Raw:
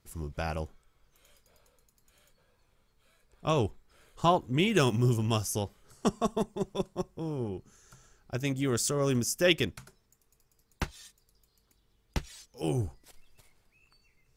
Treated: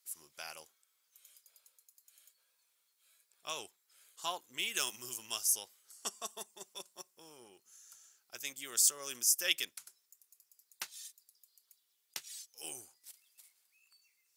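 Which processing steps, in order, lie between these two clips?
HPF 270 Hz 6 dB/oct; differentiator; gain +4 dB

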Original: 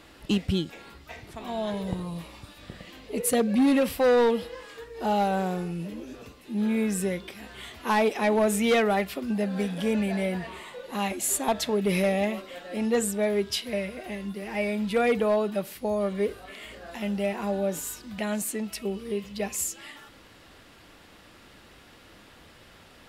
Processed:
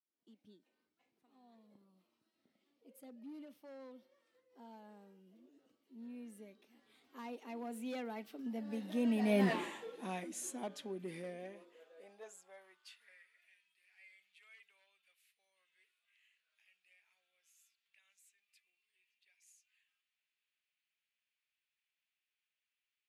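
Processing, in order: opening faded in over 0.56 s; Doppler pass-by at 9.51, 31 m/s, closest 2.6 m; high-pass sweep 250 Hz -> 2400 Hz, 11.31–13.53; gain +2.5 dB

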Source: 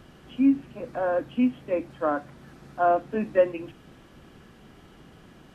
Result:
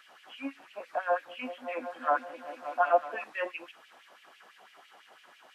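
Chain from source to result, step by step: LFO high-pass sine 6 Hz 660–2600 Hz; 1.01–3.24 repeats that get brighter 0.19 s, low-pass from 200 Hz, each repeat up 1 oct, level -3 dB; gain -2 dB

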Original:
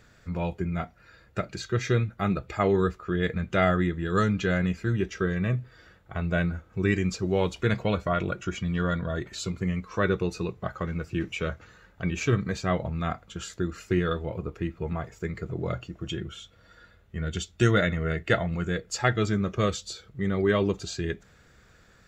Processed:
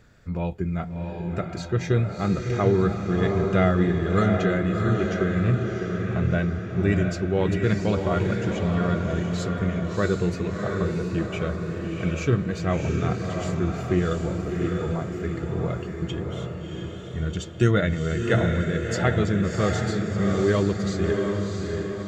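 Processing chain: tilt shelf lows +3 dB, about 720 Hz; diffused feedback echo 0.694 s, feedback 54%, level -3 dB

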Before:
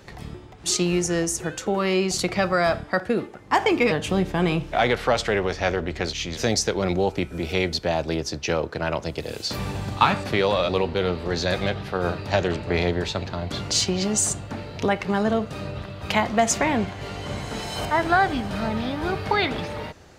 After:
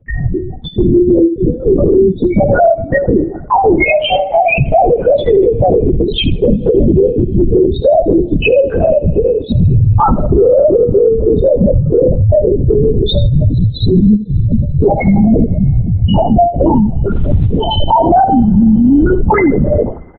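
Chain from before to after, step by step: 3.8–4.6 steep high-pass 560 Hz 72 dB/oct; loudest bins only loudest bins 2; gate with hold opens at -45 dBFS; compressor 2.5:1, threshold -34 dBFS, peak gain reduction 11 dB; 1.18–1.93 elliptic low-pass 1000 Hz, stop band 40 dB; 17.1–17.65 companded quantiser 8-bit; on a send: feedback echo 77 ms, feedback 25%, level -15 dB; on the sum: two-slope reverb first 0.29 s, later 4.4 s, from -21 dB, DRR 20 dB; LPC vocoder at 8 kHz whisper; maximiser +30 dB; gain -1 dB

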